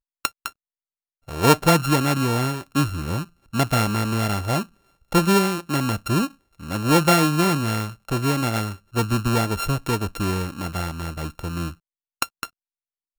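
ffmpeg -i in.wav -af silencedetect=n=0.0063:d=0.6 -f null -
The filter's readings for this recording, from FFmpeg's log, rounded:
silence_start: 0.51
silence_end: 1.28 | silence_duration: 0.77
silence_start: 12.48
silence_end: 13.18 | silence_duration: 0.70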